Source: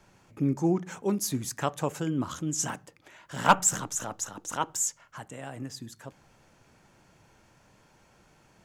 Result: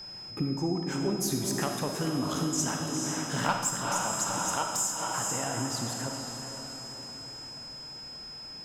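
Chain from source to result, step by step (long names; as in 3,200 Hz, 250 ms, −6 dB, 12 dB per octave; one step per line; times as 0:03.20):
feedback delay with all-pass diffusion 454 ms, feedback 54%, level −9 dB
downward compressor 5 to 1, threshold −34 dBFS, peak gain reduction 18 dB
harmonic generator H 4 −27 dB, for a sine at −19.5 dBFS
convolution reverb RT60 1.2 s, pre-delay 5 ms, DRR 3.5 dB
steady tone 5,100 Hz −47 dBFS
level +6 dB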